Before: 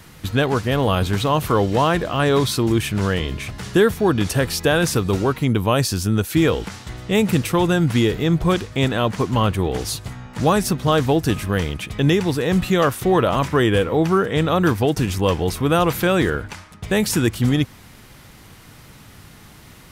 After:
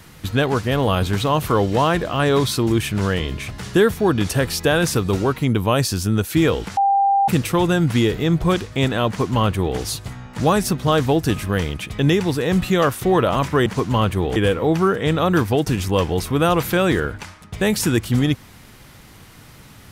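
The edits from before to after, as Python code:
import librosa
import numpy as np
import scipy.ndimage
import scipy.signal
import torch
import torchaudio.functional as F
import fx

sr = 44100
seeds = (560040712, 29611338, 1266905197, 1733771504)

y = fx.edit(x, sr, fx.bleep(start_s=6.77, length_s=0.51, hz=793.0, db=-13.0),
    fx.duplicate(start_s=9.08, length_s=0.7, to_s=13.66), tone=tone)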